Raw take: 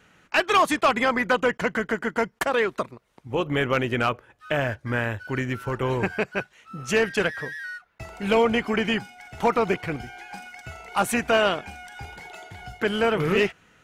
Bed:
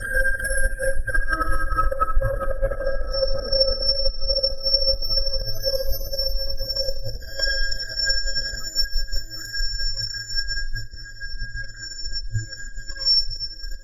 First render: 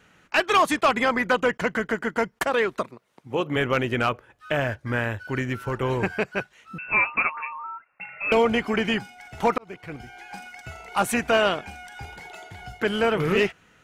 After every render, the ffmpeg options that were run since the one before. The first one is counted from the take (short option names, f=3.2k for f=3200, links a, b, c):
-filter_complex "[0:a]asettb=1/sr,asplit=3[a][b][c];[a]atrim=end=2.824[d];[b]atrim=start=2.82:end=3.56,asetpts=PTS-STARTPTS,afade=t=in:d=0.004:c=qsin,afade=t=out:st=0.736:d=0.004:c=qsin,highpass=140[e];[c]atrim=start=3.556[f];[d][e]acrossfade=d=0.004:c1=hsin:c2=qsin[g];[g][f]acrossfade=d=0.004:c1=qsin:c2=hsin,asettb=1/sr,asplit=3[h][i][j];[h]atrim=end=6.784[k];[i]atrim=start=6.78:end=8.32,asetpts=PTS-STARTPTS,afade=t=in:d=0.004:c=qsin,afade=t=out:st=1.536:d=0.004:c=qsin,lowpass=f=2.4k:t=q:w=0.5098,lowpass=f=2.4k:t=q:w=0.6013,lowpass=f=2.4k:t=q:w=0.9,lowpass=f=2.4k:t=q:w=2.563,afreqshift=-2800[l];[j]atrim=start=8.316[m];[k][l]acrossfade=d=0.004:c1=hsin:c2=qsin[n];[n][m]acrossfade=d=0.004:c1=qsin:c2=hsin,asplit=2[o][p];[o]atrim=end=9.58,asetpts=PTS-STARTPTS,afade=t=out:st=9.576:d=0.004:c=hsin[q];[p]atrim=start=9.58,asetpts=PTS-STARTPTS,afade=t=in:d=0.77[r];[q][r]concat=n=2:v=0:a=1"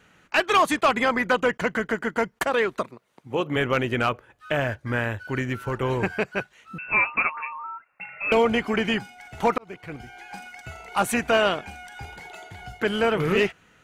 -af "bandreject=f=5.3k:w=21"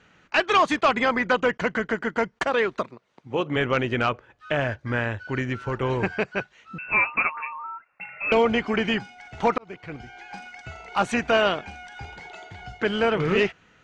-af "lowpass=f=6.4k:w=0.5412,lowpass=f=6.4k:w=1.3066"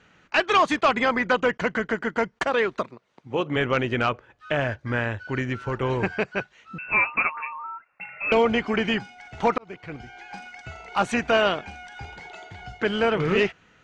-af anull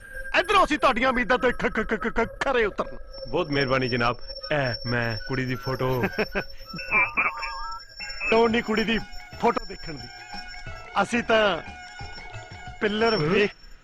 -filter_complex "[1:a]volume=-15.5dB[a];[0:a][a]amix=inputs=2:normalize=0"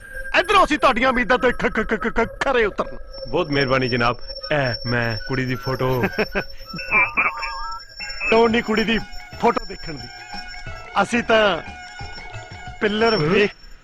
-af "volume=4.5dB"